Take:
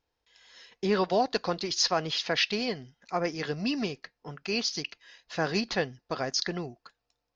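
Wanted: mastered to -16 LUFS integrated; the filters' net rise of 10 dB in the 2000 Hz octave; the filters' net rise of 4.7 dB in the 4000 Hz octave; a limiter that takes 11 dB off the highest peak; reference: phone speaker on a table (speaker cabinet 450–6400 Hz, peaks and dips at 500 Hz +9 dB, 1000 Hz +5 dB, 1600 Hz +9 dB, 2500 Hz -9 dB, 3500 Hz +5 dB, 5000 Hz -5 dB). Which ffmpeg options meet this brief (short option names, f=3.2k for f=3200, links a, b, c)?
-af "equalizer=f=2k:t=o:g=7,equalizer=f=4k:t=o:g=5,alimiter=limit=-18dB:level=0:latency=1,highpass=f=450:w=0.5412,highpass=f=450:w=1.3066,equalizer=f=500:t=q:w=4:g=9,equalizer=f=1k:t=q:w=4:g=5,equalizer=f=1.6k:t=q:w=4:g=9,equalizer=f=2.5k:t=q:w=4:g=-9,equalizer=f=3.5k:t=q:w=4:g=5,equalizer=f=5k:t=q:w=4:g=-5,lowpass=f=6.4k:w=0.5412,lowpass=f=6.4k:w=1.3066,volume=13dB"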